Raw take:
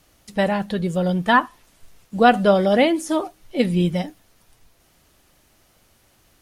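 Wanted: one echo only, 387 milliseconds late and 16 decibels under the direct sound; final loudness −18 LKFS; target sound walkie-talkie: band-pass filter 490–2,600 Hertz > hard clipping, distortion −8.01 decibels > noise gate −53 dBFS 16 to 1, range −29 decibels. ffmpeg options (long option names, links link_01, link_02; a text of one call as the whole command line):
ffmpeg -i in.wav -af "highpass=490,lowpass=2600,aecho=1:1:387:0.158,asoftclip=type=hard:threshold=-17dB,agate=range=-29dB:threshold=-53dB:ratio=16,volume=8dB" out.wav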